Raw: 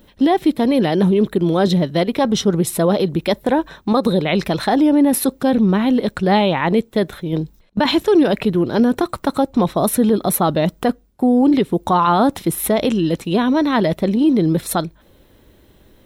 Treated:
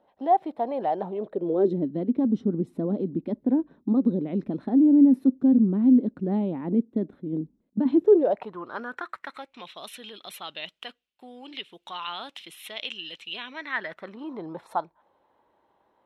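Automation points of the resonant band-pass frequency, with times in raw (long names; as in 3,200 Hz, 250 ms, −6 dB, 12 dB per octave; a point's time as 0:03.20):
resonant band-pass, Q 4.2
0:01.14 750 Hz
0:01.91 260 Hz
0:07.91 260 Hz
0:08.50 1,000 Hz
0:09.71 2,900 Hz
0:13.33 2,900 Hz
0:14.43 900 Hz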